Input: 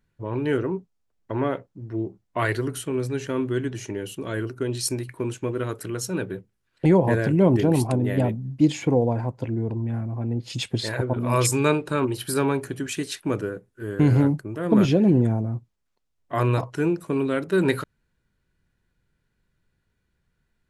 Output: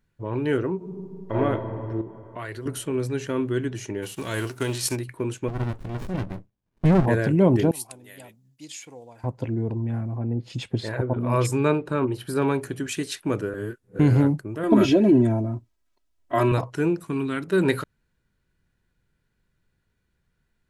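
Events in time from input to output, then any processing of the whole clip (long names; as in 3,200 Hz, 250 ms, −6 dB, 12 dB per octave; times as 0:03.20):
0:00.76–0:01.35: thrown reverb, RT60 3 s, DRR −9 dB
0:02.01–0:02.66: downward compressor 2 to 1, threshold −39 dBFS
0:04.02–0:04.95: spectral envelope flattened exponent 0.6
0:05.48–0:07.06: windowed peak hold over 65 samples
0:07.71–0:09.24: first-order pre-emphasis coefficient 0.97
0:10.18–0:12.42: high-shelf EQ 2,600 Hz −11 dB
0:13.54–0:13.99: reverse
0:14.63–0:16.52: comb filter 3.1 ms, depth 91%
0:17.04–0:17.48: parametric band 540 Hz −14 dB 0.66 octaves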